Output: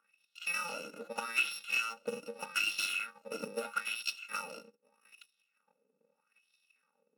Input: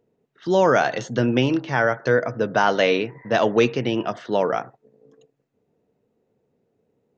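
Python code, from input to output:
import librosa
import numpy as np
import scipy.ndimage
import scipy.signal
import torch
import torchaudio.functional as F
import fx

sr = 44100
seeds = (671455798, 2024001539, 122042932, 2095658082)

y = fx.bit_reversed(x, sr, seeds[0], block=128)
y = fx.wah_lfo(y, sr, hz=0.8, low_hz=390.0, high_hz=3700.0, q=3.3)
y = 10.0 ** (-29.0 / 20.0) * np.tanh(y / 10.0 ** (-29.0 / 20.0))
y = fx.small_body(y, sr, hz=(330.0, 1400.0, 2600.0, 3700.0), ring_ms=45, db=14)
y = fx.transient(y, sr, attack_db=8, sustain_db=3)
y = fx.brickwall_highpass(y, sr, low_hz=160.0)
y = fx.band_squash(y, sr, depth_pct=40)
y = F.gain(torch.from_numpy(y), -2.5).numpy()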